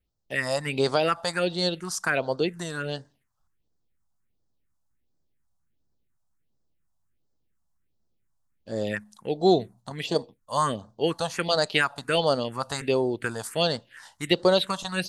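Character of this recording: phasing stages 4, 1.4 Hz, lowest notch 360–2500 Hz

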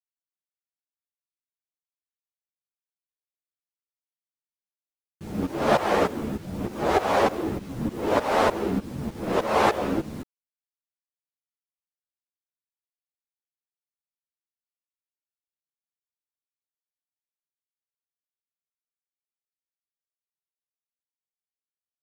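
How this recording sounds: tremolo saw up 3.3 Hz, depth 90%; a quantiser's noise floor 8-bit, dither none; a shimmering, thickened sound

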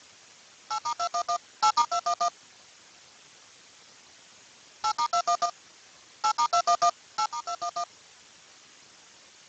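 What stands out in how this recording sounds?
a buzz of ramps at a fixed pitch in blocks of 8 samples; tremolo saw up 0.55 Hz, depth 60%; a quantiser's noise floor 8-bit, dither triangular; Speex

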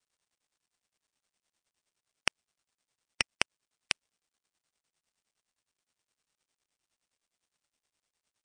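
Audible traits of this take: a buzz of ramps at a fixed pitch in blocks of 16 samples; tremolo triangle 9.7 Hz, depth 40%; a quantiser's noise floor 12-bit, dither none; MP3

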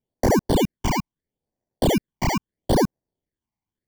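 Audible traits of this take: aliases and images of a low sample rate 1300 Hz, jitter 0%; phasing stages 8, 0.77 Hz, lowest notch 470–3300 Hz

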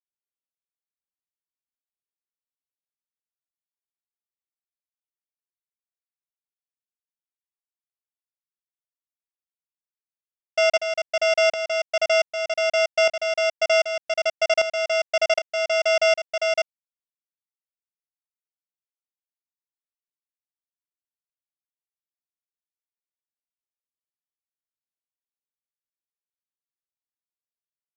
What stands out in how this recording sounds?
a buzz of ramps at a fixed pitch in blocks of 16 samples; tremolo saw up 1.3 Hz, depth 75%; a quantiser's noise floor 8-bit, dither none; µ-law

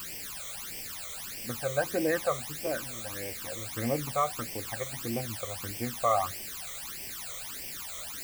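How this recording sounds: a quantiser's noise floor 6-bit, dither triangular; phasing stages 12, 1.6 Hz, lowest notch 270–1300 Hz

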